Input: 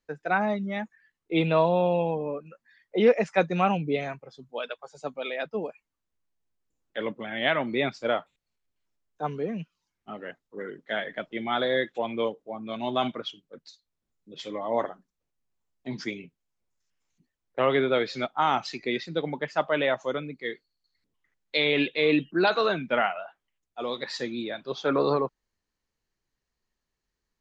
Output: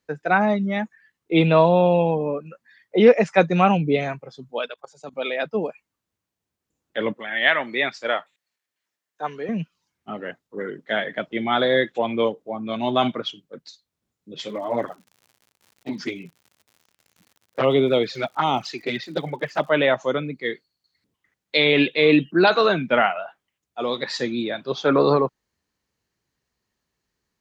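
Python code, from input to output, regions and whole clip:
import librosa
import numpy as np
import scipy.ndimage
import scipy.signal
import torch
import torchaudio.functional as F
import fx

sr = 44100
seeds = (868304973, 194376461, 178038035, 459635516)

y = fx.chain(x, sr, fx.high_shelf(hz=4400.0, db=6.5),
    fx.level_steps(step_db=20), at=(4.66, 5.13))
y = fx.chain(y, sr, fx.highpass(hz=880.0, slope=6),
    fx.peak_eq(hz=1800.0, db=8.0, octaves=0.23), at=(7.13, 9.49))
y = fx.env_flanger(y, sr, rest_ms=10.2, full_db=-19.5, at=(14.47, 19.69), fade=0.02)
y = fx.dmg_crackle(y, sr, seeds[0], per_s=120.0, level_db=-48.0, at=(14.47, 19.69), fade=0.02)
y = scipy.signal.sosfilt(scipy.signal.butter(2, 93.0, 'highpass', fs=sr, output='sos'), y)
y = fx.low_shelf(y, sr, hz=130.0, db=6.5)
y = y * librosa.db_to_amplitude(6.0)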